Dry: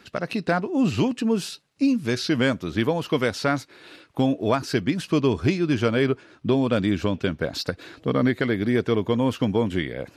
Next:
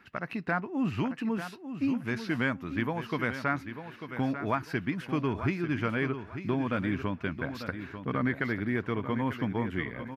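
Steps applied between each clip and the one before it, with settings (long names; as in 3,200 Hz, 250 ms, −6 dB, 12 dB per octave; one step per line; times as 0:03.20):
octave-band graphic EQ 500/1,000/2,000/4,000/8,000 Hz −7/+4/+6/−9/−12 dB
repeating echo 894 ms, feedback 28%, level −10 dB
level −7 dB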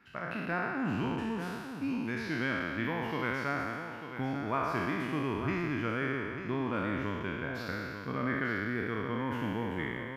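peak hold with a decay on every bin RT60 2.11 s
level −6.5 dB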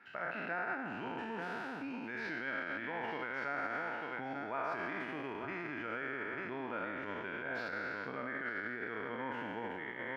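parametric band 1,100 Hz −13 dB 0.32 octaves
brickwall limiter −32.5 dBFS, peak gain reduction 13 dB
resonant band-pass 1,100 Hz, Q 1
level +8 dB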